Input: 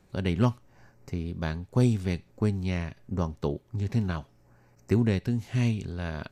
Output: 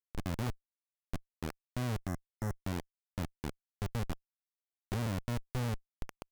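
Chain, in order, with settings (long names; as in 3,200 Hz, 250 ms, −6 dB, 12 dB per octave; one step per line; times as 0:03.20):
comparator with hysteresis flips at −24 dBFS
gain on a spectral selection 0:02.07–0:02.56, 2,100–5,200 Hz −14 dB
level −4 dB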